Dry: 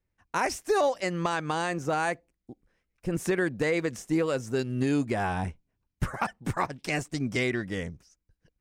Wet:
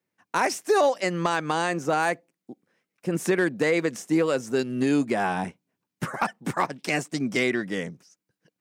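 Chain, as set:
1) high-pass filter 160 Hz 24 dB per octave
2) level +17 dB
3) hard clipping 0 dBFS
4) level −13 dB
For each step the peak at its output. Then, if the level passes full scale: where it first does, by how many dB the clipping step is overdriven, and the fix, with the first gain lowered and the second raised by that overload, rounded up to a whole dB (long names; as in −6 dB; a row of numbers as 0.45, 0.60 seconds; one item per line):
−12.0, +5.0, 0.0, −13.0 dBFS
step 2, 5.0 dB
step 2 +12 dB, step 4 −8 dB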